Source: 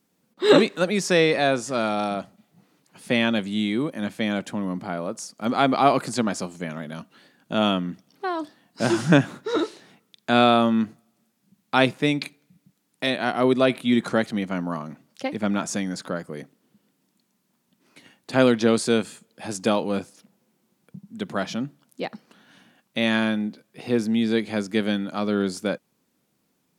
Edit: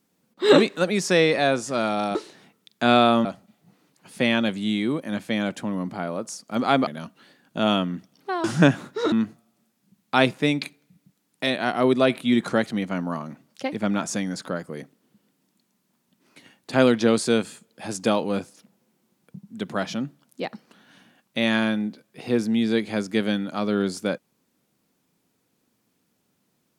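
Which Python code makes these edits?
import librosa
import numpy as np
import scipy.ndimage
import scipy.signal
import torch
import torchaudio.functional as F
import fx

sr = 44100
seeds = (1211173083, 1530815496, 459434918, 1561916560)

y = fx.edit(x, sr, fx.cut(start_s=5.77, length_s=1.05),
    fx.cut(start_s=8.39, length_s=0.55),
    fx.move(start_s=9.62, length_s=1.1, to_s=2.15), tone=tone)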